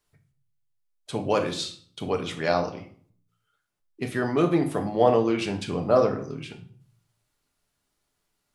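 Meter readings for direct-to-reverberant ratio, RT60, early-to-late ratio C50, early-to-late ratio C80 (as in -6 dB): 4.0 dB, 0.55 s, 11.0 dB, 15.0 dB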